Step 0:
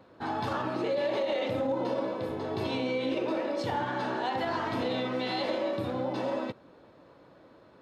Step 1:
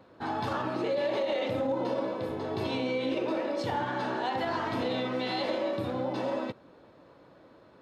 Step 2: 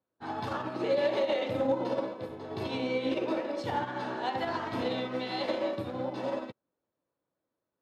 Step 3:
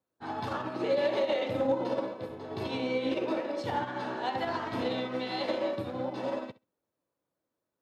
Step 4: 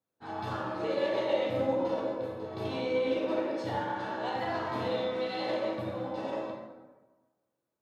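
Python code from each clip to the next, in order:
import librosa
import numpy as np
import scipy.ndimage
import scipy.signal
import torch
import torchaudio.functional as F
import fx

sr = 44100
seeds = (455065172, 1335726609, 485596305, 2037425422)

y1 = x
y2 = fx.upward_expand(y1, sr, threshold_db=-50.0, expansion=2.5)
y2 = F.gain(torch.from_numpy(y2), 3.5).numpy()
y3 = fx.room_flutter(y2, sr, wall_m=11.4, rt60_s=0.21)
y4 = fx.rev_plate(y3, sr, seeds[0], rt60_s=1.3, hf_ratio=0.55, predelay_ms=0, drr_db=-2.0)
y4 = F.gain(torch.from_numpy(y4), -5.0).numpy()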